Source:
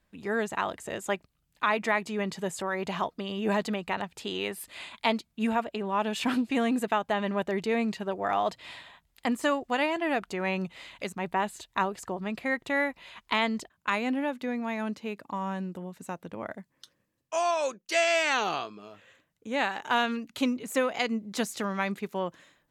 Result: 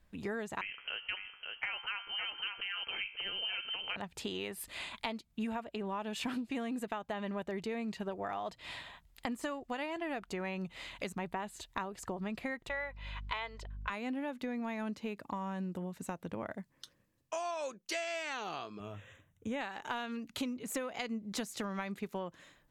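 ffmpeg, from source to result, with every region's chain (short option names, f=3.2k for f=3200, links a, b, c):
-filter_complex "[0:a]asettb=1/sr,asplit=3[a][b][c];[a]atrim=end=0.614[d];[b]atrim=start=0.61:end=3.96,asetpts=PTS-STARTPTS,afade=t=in:d=0.004:c=qsin,afade=t=out:st=3.346:d=0.004:c=qsin,bandreject=f=68.18:t=h:w=4,bandreject=f=136.36:t=h:w=4,bandreject=f=204.54:t=h:w=4,bandreject=f=272.72:t=h:w=4,bandreject=f=340.9:t=h:w=4,bandreject=f=409.08:t=h:w=4,bandreject=f=477.26:t=h:w=4,bandreject=f=545.44:t=h:w=4,bandreject=f=613.62:t=h:w=4,bandreject=f=681.8:t=h:w=4,bandreject=f=749.98:t=h:w=4,bandreject=f=818.16:t=h:w=4,bandreject=f=886.34:t=h:w=4,bandreject=f=954.52:t=h:w=4,bandreject=f=1.0227k:t=h:w=4,bandreject=f=1.09088k:t=h:w=4,bandreject=f=1.15906k:t=h:w=4,bandreject=f=1.22724k:t=h:w=4,bandreject=f=1.29542k:t=h:w=4,bandreject=f=1.3636k:t=h:w=4,bandreject=f=1.43178k:t=h:w=4,bandreject=f=1.49996k:t=h:w=4,bandreject=f=1.56814k:t=h:w=4,bandreject=f=1.63632k:t=h:w=4,bandreject=f=1.7045k:t=h:w=4,bandreject=f=1.77268k:t=h:w=4,bandreject=f=1.84086k:t=h:w=4,bandreject=f=1.90904k:t=h:w=4,bandreject=f=1.97722k:t=h:w=4,bandreject=f=2.0454k:t=h:w=4,bandreject=f=2.11358k:t=h:w=4,bandreject=f=2.18176k:t=h:w=4,bandreject=f=2.24994k:t=h:w=4,bandreject=f=2.31812k:t=h:w=4,bandreject=f=2.3863k:t=h:w=4,bandreject=f=2.45448k:t=h:w=4,bandreject=f=2.52266k:t=h:w=4,aecho=1:1:554:0.376,atrim=end_sample=147735,lowpass=f=2.8k:t=q:w=0.5098,lowpass=f=2.8k:t=q:w=0.6013,lowpass=f=2.8k:t=q:w=0.9,lowpass=f=2.8k:t=q:w=2.563,afreqshift=-3300[e];[c]atrim=start=3.956[f];[d][e]acrossfade=d=0.004:c1=hsin:c2=qsin[g];[g][f]acrossfade=d=0.004:c1=qsin:c2=hsin,asettb=1/sr,asplit=3[h][i][j];[h]atrim=end=12.694[k];[i]atrim=start=12.69:end=13.9,asetpts=PTS-STARTPTS,afade=t=in:d=0.004:c=qsin,afade=t=out:st=1.206:d=0.004:c=qsin,acrossover=split=440 4600:gain=0.0708 1 0.224[l][m][n];[l][m][n]amix=inputs=3:normalize=0,aeval=exprs='val(0)+0.00282*(sin(2*PI*50*n/s)+sin(2*PI*2*50*n/s)/2+sin(2*PI*3*50*n/s)/3+sin(2*PI*4*50*n/s)/4+sin(2*PI*5*50*n/s)/5)':c=same,aecho=1:1:2:0.34,atrim=end_sample=53361[o];[j]atrim=start=13.896[p];[k][o]acrossfade=d=0.004:c1=hsin:c2=qsin[q];[q][p]acrossfade=d=0.004:c1=qsin:c2=hsin,asettb=1/sr,asplit=3[r][s][t];[r]atrim=end=18.804[u];[s]atrim=start=18.8:end=19.61,asetpts=PTS-STARTPTS,afade=t=in:d=0.004:c=qsin,afade=t=out:st=0.806:d=0.004:c=qsin,asuperstop=centerf=4600:order=8:qfactor=2.7,equalizer=f=96:w=1.4:g=12.5[v];[t]atrim=start=19.606[w];[u][v]acrossfade=d=0.004:c1=hsin:c2=qsin[x];[x][w]acrossfade=d=0.004:c1=qsin:c2=hsin,acompressor=threshold=-36dB:ratio=6,lowshelf=f=80:g=11.5"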